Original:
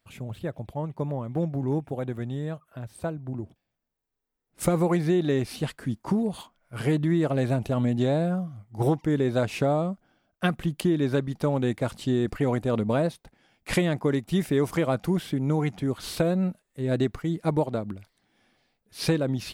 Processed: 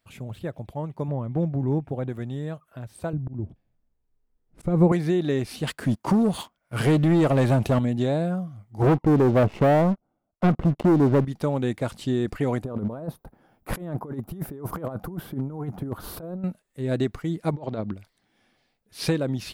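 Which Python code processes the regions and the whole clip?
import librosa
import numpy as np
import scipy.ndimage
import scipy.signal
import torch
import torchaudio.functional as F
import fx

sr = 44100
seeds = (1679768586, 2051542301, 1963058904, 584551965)

y = fx.chain(x, sr, fx.lowpass(hz=3100.0, slope=6),
    fx.low_shelf(hz=150.0, db=7.0), at=(1.08, 2.09))
y = fx.chain(y, sr, fx.tilt_eq(slope=-3.5),
    fx.auto_swell(attack_ms=220.0), at=(3.13, 4.92))
y = fx.chain(y, sr, fx.highpass(hz=43.0, slope=12),
    fx.leveller(passes=2), at=(5.67, 7.79))
y = fx.chain(y, sr, fx.halfwave_gain(db=-3.0),
    fx.savgol(points=65),
    fx.leveller(passes=3), at=(8.82, 11.25))
y = fx.chain(y, sr, fx.band_shelf(hz=4100.0, db=-16.0, octaves=2.6),
    fx.over_compress(threshold_db=-29.0, ratio=-0.5),
    fx.overload_stage(gain_db=20.5), at=(12.64, 16.44))
y = fx.chain(y, sr, fx.lowpass(hz=5500.0, slope=24),
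    fx.over_compress(threshold_db=-29.0, ratio=-0.5), at=(17.53, 17.94))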